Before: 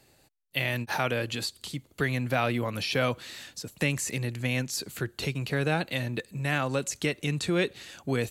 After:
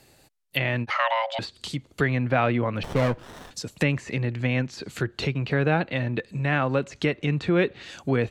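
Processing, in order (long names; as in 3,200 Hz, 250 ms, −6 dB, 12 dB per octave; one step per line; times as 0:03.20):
0:00.90–0:01.39: frequency shifter +440 Hz
treble cut that deepens with the level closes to 2,300 Hz, closed at −27.5 dBFS
0:02.83–0:03.51: windowed peak hold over 17 samples
level +5 dB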